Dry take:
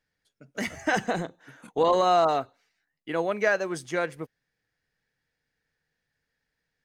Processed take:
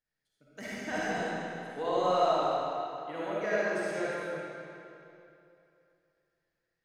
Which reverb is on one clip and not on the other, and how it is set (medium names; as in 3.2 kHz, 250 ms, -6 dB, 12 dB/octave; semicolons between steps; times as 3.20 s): algorithmic reverb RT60 2.8 s, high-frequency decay 0.85×, pre-delay 15 ms, DRR -8.5 dB; trim -14 dB